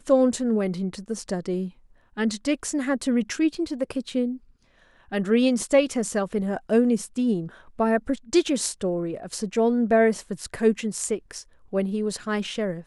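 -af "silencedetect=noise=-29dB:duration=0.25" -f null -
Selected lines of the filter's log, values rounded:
silence_start: 1.67
silence_end: 2.18 | silence_duration: 0.51
silence_start: 4.34
silence_end: 5.13 | silence_duration: 0.78
silence_start: 7.45
silence_end: 7.80 | silence_duration: 0.34
silence_start: 11.39
silence_end: 11.73 | silence_duration: 0.34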